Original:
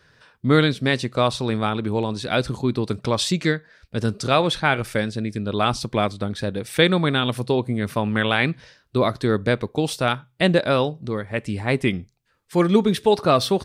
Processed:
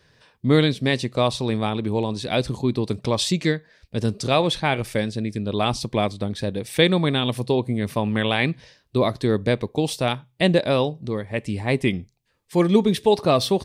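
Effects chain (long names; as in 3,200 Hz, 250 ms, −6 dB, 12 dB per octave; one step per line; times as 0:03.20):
parametric band 1,400 Hz −10 dB 0.43 octaves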